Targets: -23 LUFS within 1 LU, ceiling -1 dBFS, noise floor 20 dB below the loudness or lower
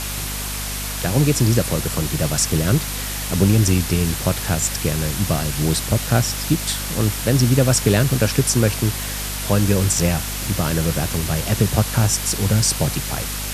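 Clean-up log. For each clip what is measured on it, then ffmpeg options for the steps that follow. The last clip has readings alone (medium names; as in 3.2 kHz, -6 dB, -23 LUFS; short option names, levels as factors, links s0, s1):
hum 50 Hz; highest harmonic 250 Hz; hum level -28 dBFS; noise floor -27 dBFS; noise floor target -40 dBFS; loudness -19.5 LUFS; peak level -1.0 dBFS; loudness target -23.0 LUFS
-> -af "bandreject=f=50:t=h:w=4,bandreject=f=100:t=h:w=4,bandreject=f=150:t=h:w=4,bandreject=f=200:t=h:w=4,bandreject=f=250:t=h:w=4"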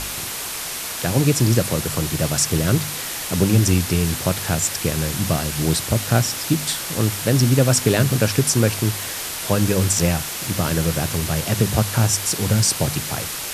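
hum not found; noise floor -29 dBFS; noise floor target -40 dBFS
-> -af "afftdn=nr=11:nf=-29"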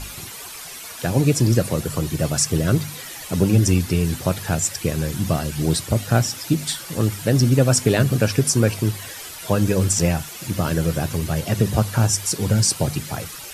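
noise floor -36 dBFS; noise floor target -41 dBFS
-> -af "afftdn=nr=6:nf=-36"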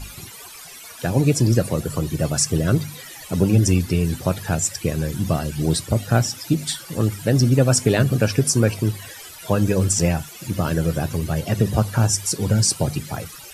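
noise floor -40 dBFS; noise floor target -41 dBFS
-> -af "afftdn=nr=6:nf=-40"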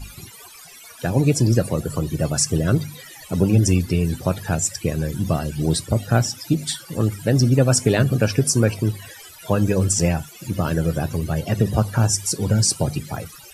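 noise floor -43 dBFS; loudness -20.5 LUFS; peak level -2.0 dBFS; loudness target -23.0 LUFS
-> -af "volume=0.75"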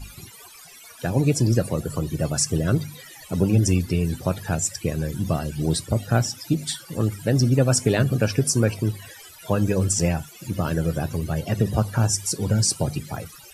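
loudness -23.0 LUFS; peak level -4.5 dBFS; noise floor -46 dBFS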